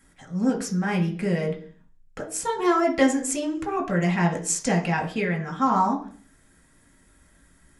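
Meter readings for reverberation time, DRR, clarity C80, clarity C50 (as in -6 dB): 0.45 s, 0.0 dB, 15.5 dB, 11.5 dB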